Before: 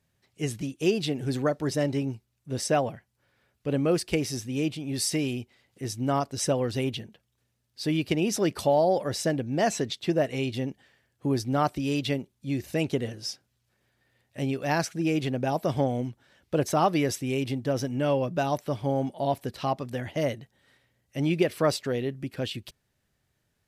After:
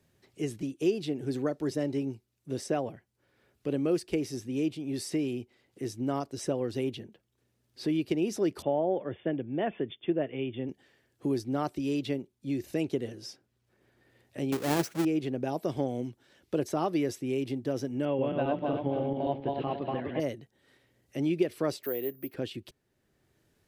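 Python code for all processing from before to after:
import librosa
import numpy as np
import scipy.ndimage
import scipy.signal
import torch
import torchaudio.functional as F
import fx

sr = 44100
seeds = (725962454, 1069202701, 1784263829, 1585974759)

y = fx.chain(x, sr, fx.brickwall_lowpass(high_hz=3600.0),
    fx.band_widen(depth_pct=40), at=(8.62, 10.69))
y = fx.chain(y, sr, fx.halfwave_hold(),
    fx.highpass(hz=61.0, slope=12),
    fx.high_shelf(hz=3800.0, db=7.0), at=(14.52, 15.05))
y = fx.chain(y, sr, fx.reverse_delay_fb(ms=135, feedback_pct=57, wet_db=-1.5),
    fx.steep_lowpass(hz=3300.0, slope=36), at=(18.05, 20.2))
y = fx.chain(y, sr, fx.bass_treble(bass_db=-14, treble_db=-1),
    fx.resample_bad(factor=3, down='filtered', up='zero_stuff'),
    fx.band_squash(depth_pct=40), at=(21.83, 22.34))
y = fx.peak_eq(y, sr, hz=350.0, db=9.0, octaves=0.96)
y = fx.band_squash(y, sr, depth_pct=40)
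y = y * 10.0 ** (-9.0 / 20.0)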